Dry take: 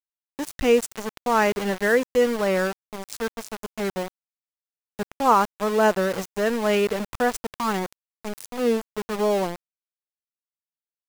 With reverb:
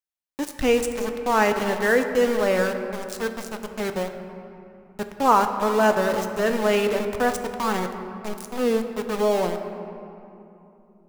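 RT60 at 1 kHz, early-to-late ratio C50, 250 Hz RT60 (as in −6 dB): 2.9 s, 8.0 dB, 3.8 s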